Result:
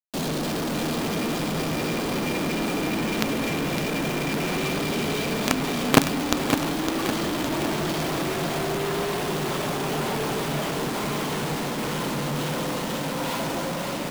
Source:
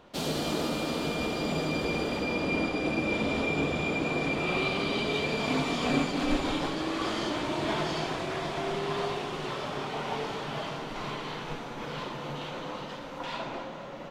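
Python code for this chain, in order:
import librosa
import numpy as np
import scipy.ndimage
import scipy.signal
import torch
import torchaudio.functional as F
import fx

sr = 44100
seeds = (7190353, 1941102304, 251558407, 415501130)

p1 = scipy.signal.sosfilt(scipy.signal.butter(4, 140.0, 'highpass', fs=sr, output='sos'), x)
p2 = fx.low_shelf(p1, sr, hz=340.0, db=11.5)
p3 = fx.quant_companded(p2, sr, bits=2)
p4 = p3 + fx.echo_feedback(p3, sr, ms=559, feedback_pct=56, wet_db=-8, dry=0)
y = p4 * 10.0 ** (-1.5 / 20.0)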